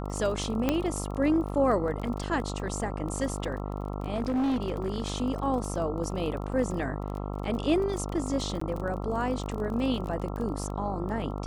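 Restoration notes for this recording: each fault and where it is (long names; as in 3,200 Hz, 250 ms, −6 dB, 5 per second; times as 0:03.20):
mains buzz 50 Hz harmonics 27 −34 dBFS
surface crackle 23 per second −34 dBFS
0:00.69: click −11 dBFS
0:04.14–0:05.06: clipping −24 dBFS
0:08.60–0:08.61: drop-out 14 ms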